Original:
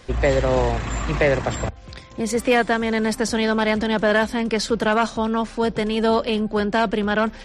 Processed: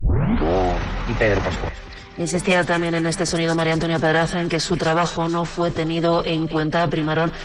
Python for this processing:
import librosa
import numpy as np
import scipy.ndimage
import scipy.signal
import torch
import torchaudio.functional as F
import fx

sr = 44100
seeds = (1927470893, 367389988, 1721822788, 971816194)

p1 = fx.tape_start_head(x, sr, length_s=0.57)
p2 = fx.transient(p1, sr, attack_db=1, sustain_db=7)
p3 = fx.pitch_keep_formants(p2, sr, semitones=-5.0)
y = p3 + fx.echo_wet_highpass(p3, sr, ms=231, feedback_pct=57, hz=1500.0, wet_db=-12.0, dry=0)